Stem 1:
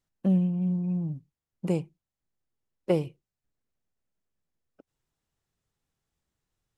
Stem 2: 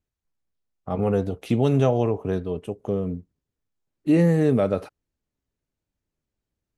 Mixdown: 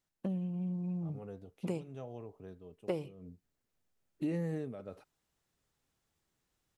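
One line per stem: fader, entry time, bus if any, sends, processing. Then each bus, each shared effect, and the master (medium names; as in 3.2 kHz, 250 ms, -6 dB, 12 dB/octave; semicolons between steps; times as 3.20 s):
+0.5 dB, 0.00 s, no send, bass shelf 160 Hz -8 dB; gain riding 2 s
-5.0 dB, 0.15 s, no send, auto duck -19 dB, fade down 0.25 s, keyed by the first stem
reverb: none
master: compression 3:1, threshold -36 dBFS, peak gain reduction 14 dB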